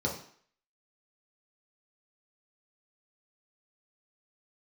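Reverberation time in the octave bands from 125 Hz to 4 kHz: 0.45, 0.50, 0.50, 0.60, 0.60, 0.55 seconds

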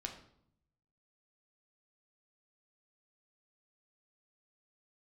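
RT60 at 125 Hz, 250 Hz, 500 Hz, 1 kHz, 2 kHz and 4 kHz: 1.2, 0.95, 0.70, 0.65, 0.50, 0.50 seconds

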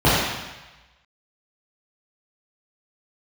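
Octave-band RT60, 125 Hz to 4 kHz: 1.1, 0.90, 1.0, 1.2, 1.2, 1.1 seconds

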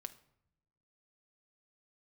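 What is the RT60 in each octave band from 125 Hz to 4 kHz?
1.3, 1.2, 0.75, 0.70, 0.60, 0.45 seconds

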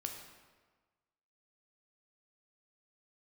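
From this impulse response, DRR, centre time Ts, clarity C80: 2.5 dB, 38 ms, 7.0 dB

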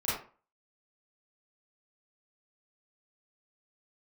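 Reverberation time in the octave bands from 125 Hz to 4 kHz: 0.35, 0.35, 0.35, 0.40, 0.35, 0.25 seconds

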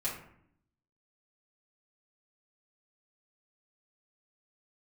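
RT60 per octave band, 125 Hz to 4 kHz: 1.0, 0.95, 0.70, 0.65, 0.60, 0.40 seconds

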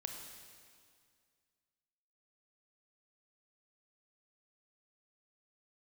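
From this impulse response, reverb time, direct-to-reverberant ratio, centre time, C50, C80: 2.1 s, 3.0 dB, 56 ms, 4.0 dB, 5.5 dB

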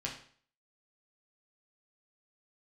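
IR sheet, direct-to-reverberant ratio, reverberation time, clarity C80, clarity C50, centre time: −2.5 dB, 0.50 s, 11.0 dB, 7.0 dB, 24 ms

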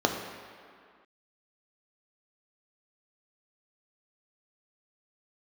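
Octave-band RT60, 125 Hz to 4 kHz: 1.6 s, 2.0 s, 2.0 s, 2.3 s, can't be measured, 1.6 s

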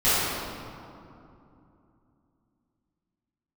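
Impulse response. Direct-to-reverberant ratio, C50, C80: −16.0 dB, −5.0 dB, −2.5 dB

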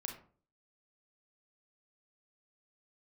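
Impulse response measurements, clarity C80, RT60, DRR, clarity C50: 12.0 dB, 0.45 s, 2.0 dB, 7.0 dB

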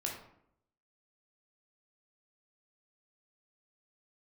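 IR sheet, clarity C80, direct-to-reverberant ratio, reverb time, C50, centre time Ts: 8.5 dB, −1.0 dB, 0.70 s, 4.5 dB, 33 ms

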